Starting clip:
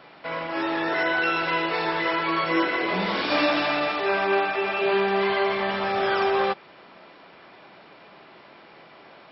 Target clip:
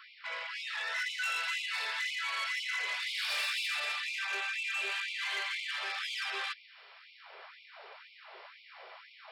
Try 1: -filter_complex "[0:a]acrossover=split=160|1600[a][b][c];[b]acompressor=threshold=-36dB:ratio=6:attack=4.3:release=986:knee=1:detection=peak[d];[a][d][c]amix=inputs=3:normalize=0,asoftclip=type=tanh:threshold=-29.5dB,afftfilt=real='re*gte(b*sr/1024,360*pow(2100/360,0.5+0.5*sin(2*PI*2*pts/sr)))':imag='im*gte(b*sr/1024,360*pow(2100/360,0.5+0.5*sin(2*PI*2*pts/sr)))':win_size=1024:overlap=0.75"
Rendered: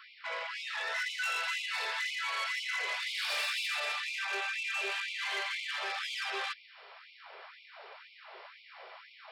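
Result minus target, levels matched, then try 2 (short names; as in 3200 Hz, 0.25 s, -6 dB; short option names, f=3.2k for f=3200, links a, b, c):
compressor: peak gain reduction -8 dB
-filter_complex "[0:a]acrossover=split=160|1600[a][b][c];[b]acompressor=threshold=-45.5dB:ratio=6:attack=4.3:release=986:knee=1:detection=peak[d];[a][d][c]amix=inputs=3:normalize=0,asoftclip=type=tanh:threshold=-29.5dB,afftfilt=real='re*gte(b*sr/1024,360*pow(2100/360,0.5+0.5*sin(2*PI*2*pts/sr)))':imag='im*gte(b*sr/1024,360*pow(2100/360,0.5+0.5*sin(2*PI*2*pts/sr)))':win_size=1024:overlap=0.75"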